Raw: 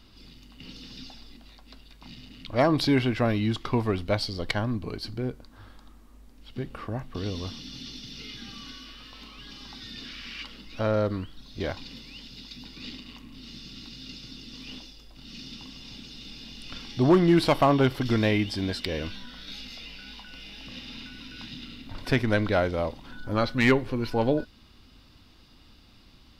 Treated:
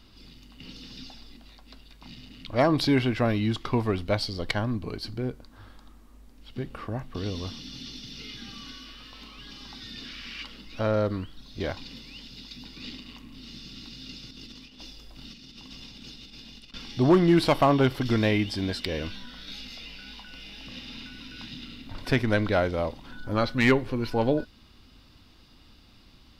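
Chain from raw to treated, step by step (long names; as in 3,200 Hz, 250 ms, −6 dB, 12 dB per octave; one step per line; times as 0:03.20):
0:14.30–0:16.74: compressor whose output falls as the input rises −45 dBFS, ratio −0.5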